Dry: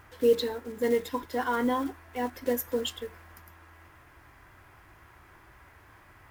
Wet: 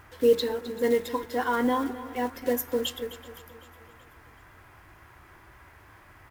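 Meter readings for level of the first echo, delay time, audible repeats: −15.0 dB, 260 ms, 5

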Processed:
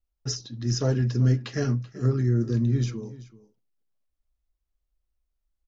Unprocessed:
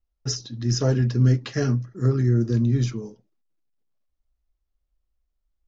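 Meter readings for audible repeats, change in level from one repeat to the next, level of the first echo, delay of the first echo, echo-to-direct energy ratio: 1, repeats not evenly spaced, −18.0 dB, 383 ms, −18.0 dB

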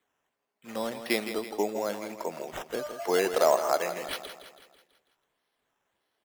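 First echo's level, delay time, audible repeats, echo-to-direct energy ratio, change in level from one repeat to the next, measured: −10.0 dB, 164 ms, 5, −8.5 dB, −6.0 dB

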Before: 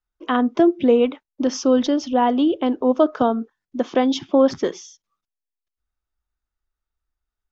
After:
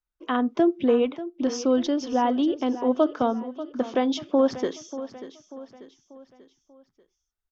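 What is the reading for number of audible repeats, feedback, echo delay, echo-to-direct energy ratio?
4, 46%, 589 ms, −13.0 dB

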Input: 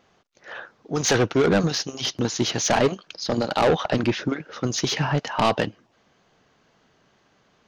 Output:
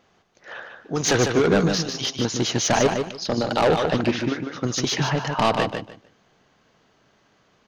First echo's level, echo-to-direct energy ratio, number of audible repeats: −6.0 dB, −6.0 dB, 3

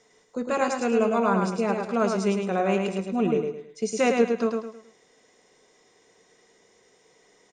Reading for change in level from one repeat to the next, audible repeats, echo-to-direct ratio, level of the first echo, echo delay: −9.5 dB, 4, −4.0 dB, −4.5 dB, 107 ms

